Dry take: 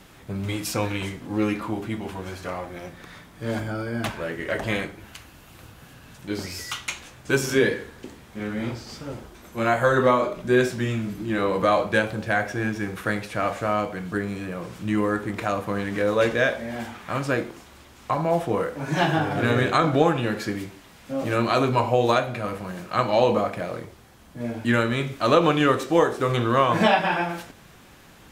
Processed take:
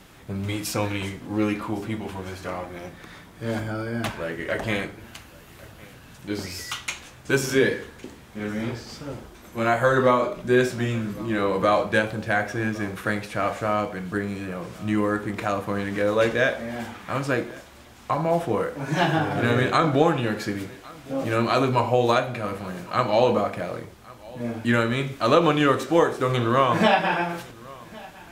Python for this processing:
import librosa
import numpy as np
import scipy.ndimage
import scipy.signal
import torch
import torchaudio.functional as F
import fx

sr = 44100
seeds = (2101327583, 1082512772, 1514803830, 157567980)

y = x + 10.0 ** (-22.5 / 20.0) * np.pad(x, (int(1109 * sr / 1000.0), 0))[:len(x)]